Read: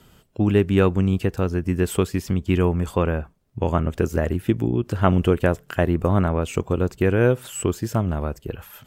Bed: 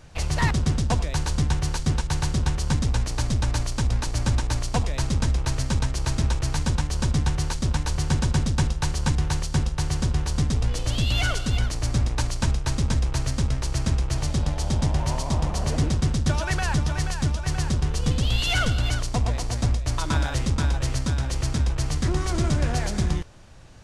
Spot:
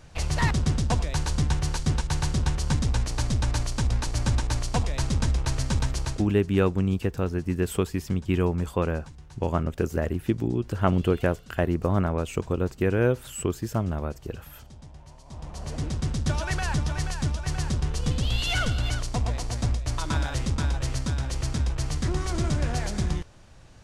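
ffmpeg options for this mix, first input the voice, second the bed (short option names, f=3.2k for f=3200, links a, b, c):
-filter_complex "[0:a]adelay=5800,volume=-4.5dB[a];[1:a]volume=19dB,afade=t=out:st=5.97:d=0.33:silence=0.0794328,afade=t=in:st=15.23:d=1.1:silence=0.0944061[b];[a][b]amix=inputs=2:normalize=0"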